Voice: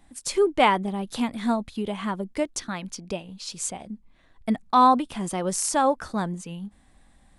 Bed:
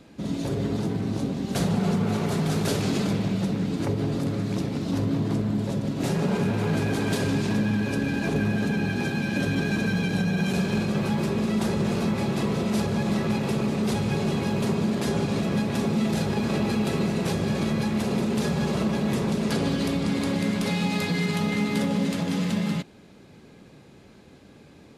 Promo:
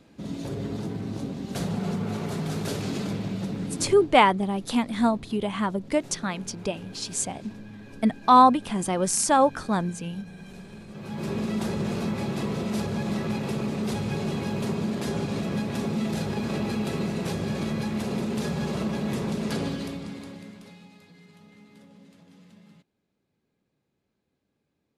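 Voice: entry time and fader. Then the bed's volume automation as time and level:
3.55 s, +2.0 dB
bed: 3.81 s -5 dB
4.18 s -19 dB
10.87 s -19 dB
11.30 s -3.5 dB
19.61 s -3.5 dB
21.01 s -27.5 dB

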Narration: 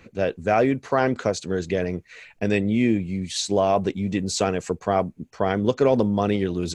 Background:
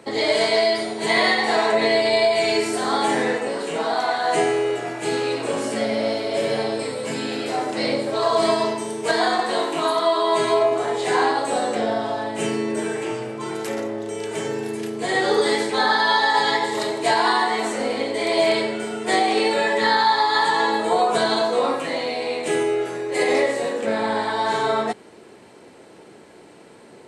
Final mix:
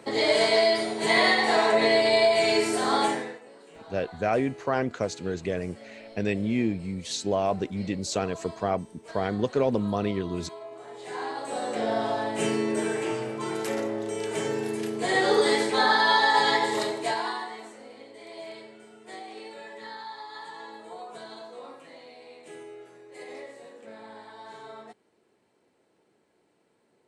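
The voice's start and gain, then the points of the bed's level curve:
3.75 s, -5.5 dB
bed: 3.04 s -2.5 dB
3.43 s -24 dB
10.61 s -24 dB
12.02 s -2.5 dB
16.77 s -2.5 dB
17.81 s -22.5 dB

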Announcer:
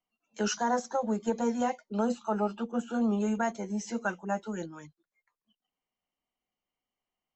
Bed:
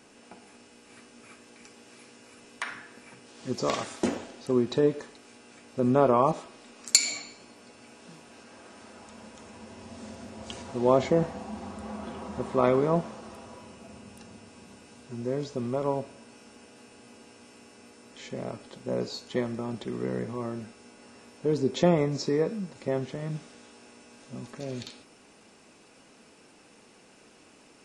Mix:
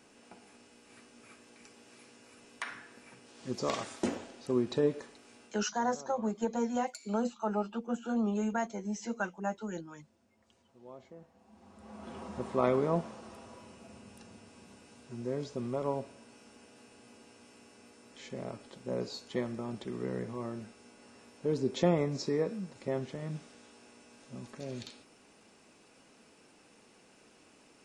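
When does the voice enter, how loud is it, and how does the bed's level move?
5.15 s, -3.0 dB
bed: 5.45 s -5 dB
5.72 s -28.5 dB
11.27 s -28.5 dB
12.16 s -5 dB

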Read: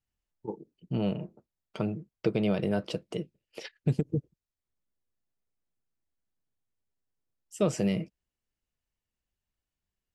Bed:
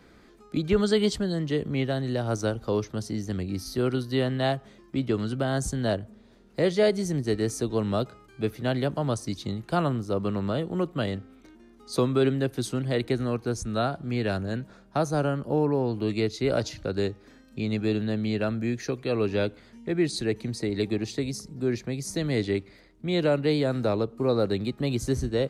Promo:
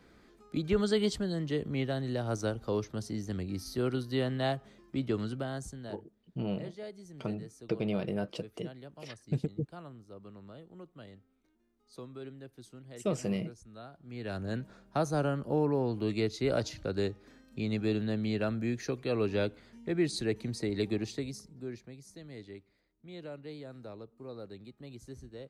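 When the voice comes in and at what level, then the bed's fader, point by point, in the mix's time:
5.45 s, -5.0 dB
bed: 5.24 s -5.5 dB
6.12 s -22 dB
13.91 s -22 dB
14.49 s -4.5 dB
21.01 s -4.5 dB
22.13 s -20.5 dB

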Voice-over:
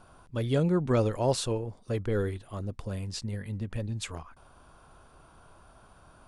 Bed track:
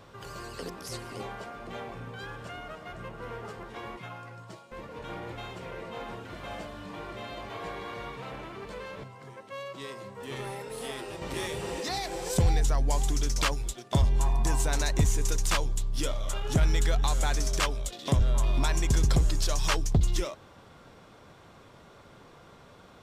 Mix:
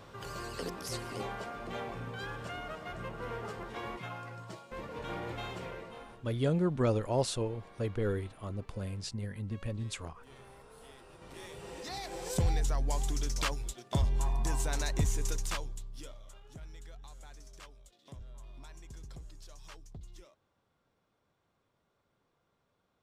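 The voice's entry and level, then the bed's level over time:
5.90 s, -3.5 dB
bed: 5.61 s 0 dB
6.32 s -18 dB
11.04 s -18 dB
12.22 s -5.5 dB
15.30 s -5.5 dB
16.53 s -24.5 dB

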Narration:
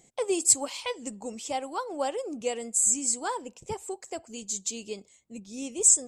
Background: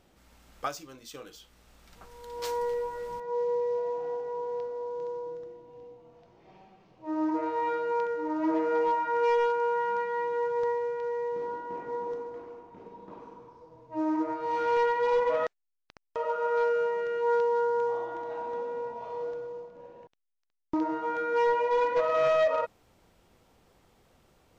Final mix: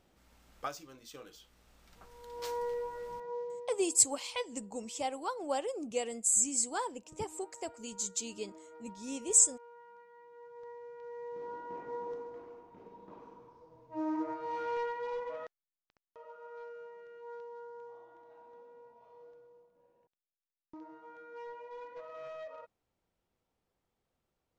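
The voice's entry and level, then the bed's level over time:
3.50 s, -4.0 dB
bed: 3.25 s -5.5 dB
4.00 s -26.5 dB
10.22 s -26.5 dB
11.63 s -6 dB
14.31 s -6 dB
16.15 s -21 dB

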